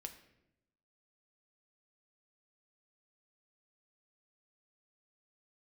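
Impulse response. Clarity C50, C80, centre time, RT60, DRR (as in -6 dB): 11.0 dB, 13.5 dB, 13 ms, 0.85 s, 5.5 dB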